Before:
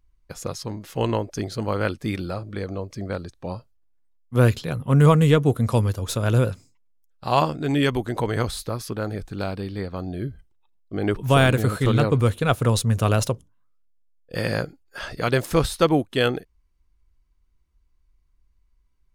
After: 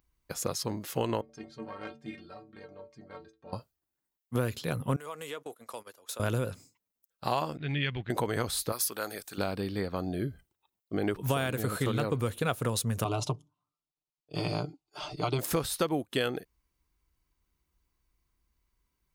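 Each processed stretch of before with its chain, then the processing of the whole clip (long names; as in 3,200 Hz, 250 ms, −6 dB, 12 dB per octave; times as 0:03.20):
0:01.21–0:03.53: tube saturation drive 14 dB, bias 0.7 + high-frequency loss of the air 110 metres + stiff-string resonator 67 Hz, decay 0.51 s, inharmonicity 0.03
0:04.96–0:06.20: high-pass filter 540 Hz + noise gate −35 dBFS, range −20 dB + downward compressor 2.5 to 1, threshold −43 dBFS
0:07.57–0:08.10: mu-law and A-law mismatch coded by A + low-pass filter 3,300 Hz 24 dB per octave + flat-topped bell 550 Hz −13.5 dB 2.9 octaves
0:08.72–0:09.38: high-pass filter 1,000 Hz 6 dB per octave + high-shelf EQ 6,800 Hz +12 dB
0:13.04–0:15.39: low-pass filter 4,600 Hz + phaser with its sweep stopped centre 340 Hz, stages 8 + comb filter 6.7 ms, depth 46%
whole clip: high-pass filter 160 Hz 6 dB per octave; high-shelf EQ 12,000 Hz +12 dB; downward compressor 6 to 1, threshold −26 dBFS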